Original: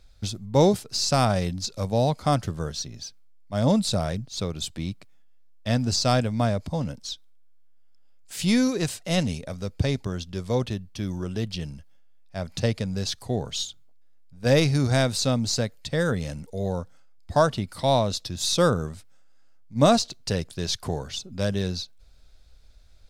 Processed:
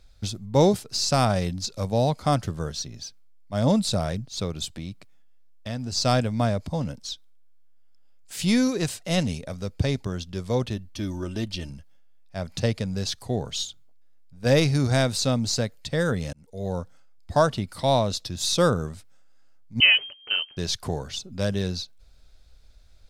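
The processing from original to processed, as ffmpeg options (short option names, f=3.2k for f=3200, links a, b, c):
-filter_complex "[0:a]asplit=3[a][b][c];[a]afade=t=out:st=4.65:d=0.02[d];[b]acompressor=threshold=-31dB:ratio=2.5:attack=3.2:release=140:knee=1:detection=peak,afade=t=in:st=4.65:d=0.02,afade=t=out:st=5.95:d=0.02[e];[c]afade=t=in:st=5.95:d=0.02[f];[d][e][f]amix=inputs=3:normalize=0,asettb=1/sr,asplit=3[g][h][i];[g]atrim=end=10.764[j];[h]atrim=start=10.76:end=11.7,asetpts=PTS-STARTPTS,afade=t=in:d=0.004:c=qsin,afade=t=out:st=0.936:d=0.004:c=qsin,aecho=1:1:3.3:0.56,atrim=end_sample=41454[k];[i]atrim=start=11.696[l];[j][k]acrossfade=d=0.004:c1=hsin:c2=qsin[m];[m][l]acrossfade=d=0.004:c1=qsin:c2=hsin,asettb=1/sr,asplit=3[n][o][p];[n]atrim=end=19.804[q];[o]atrim=start=19.8:end=20.57,asetpts=PTS-STARTPTS,afade=t=in:d=0.004:c=qsin,afade=t=out:st=0.766:d=0.004:c=qsin,lowpass=f=2.7k:t=q:w=0.5098,lowpass=f=2.7k:t=q:w=0.6013,lowpass=f=2.7k:t=q:w=0.9,lowpass=f=2.7k:t=q:w=2.563,afreqshift=-3200[r];[p]atrim=start=20.566[s];[q][r]acrossfade=d=0.004:c1=hsin:c2=qsin[t];[t][s]acrossfade=d=0.004:c1=qsin:c2=hsin,asplit=2[u][v];[u]atrim=end=16.33,asetpts=PTS-STARTPTS,afade=t=out:st=16.326:d=0.004:c=hsin[w];[v]atrim=start=16.33,asetpts=PTS-STARTPTS,afade=t=in:d=0.43[x];[w][x]concat=n=2:v=0:a=1"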